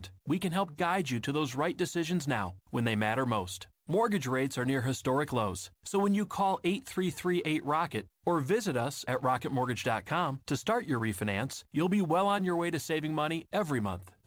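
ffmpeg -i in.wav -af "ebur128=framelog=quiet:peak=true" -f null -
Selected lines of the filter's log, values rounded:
Integrated loudness:
  I:         -31.5 LUFS
  Threshold: -41.5 LUFS
Loudness range:
  LRA:         0.9 LU
  Threshold: -51.5 LUFS
  LRA low:   -31.9 LUFS
  LRA high:  -31.0 LUFS
True peak:
  Peak:      -15.7 dBFS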